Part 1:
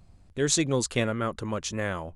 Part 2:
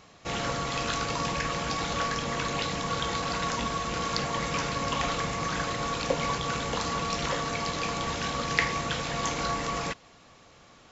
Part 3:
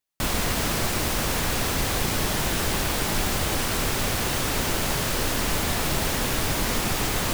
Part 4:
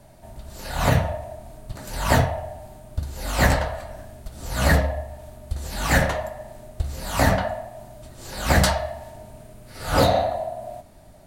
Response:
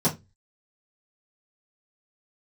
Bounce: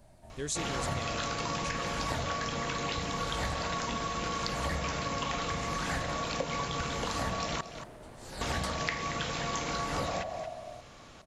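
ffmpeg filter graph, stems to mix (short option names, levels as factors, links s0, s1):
-filter_complex "[0:a]highshelf=f=5400:g=9,volume=0.299[s0];[1:a]adelay=300,volume=1.26,asplit=3[s1][s2][s3];[s1]atrim=end=7.61,asetpts=PTS-STARTPTS,afade=t=out:st=7.606:d=0.004:c=hsin[s4];[s2]atrim=start=7.61:end=8.41,asetpts=PTS-STARTPTS,volume=0[s5];[s3]atrim=start=8.41,asetpts=PTS-STARTPTS,afade=t=in:d=0.004:c=hsin[s6];[s4][s5][s6]concat=n=3:v=0:a=1,asplit=2[s7][s8];[s8]volume=0.158[s9];[2:a]aeval=exprs='0.0841*(abs(mod(val(0)/0.0841+3,4)-2)-1)':c=same,bandpass=f=470:t=q:w=0.72:csg=0,adelay=2450,volume=0.133[s10];[3:a]lowpass=f=11000:w=0.5412,lowpass=f=11000:w=1.3066,volume=0.335[s11];[s9]aecho=0:1:229:1[s12];[s0][s7][s10][s11][s12]amix=inputs=5:normalize=0,acompressor=threshold=0.0251:ratio=3"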